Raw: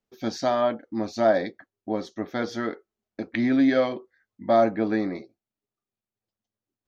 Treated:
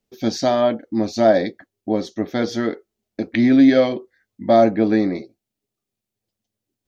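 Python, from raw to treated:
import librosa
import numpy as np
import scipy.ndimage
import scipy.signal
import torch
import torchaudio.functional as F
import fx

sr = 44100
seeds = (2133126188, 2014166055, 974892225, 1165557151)

y = fx.peak_eq(x, sr, hz=1200.0, db=-8.0, octaves=1.4)
y = F.gain(torch.from_numpy(y), 8.5).numpy()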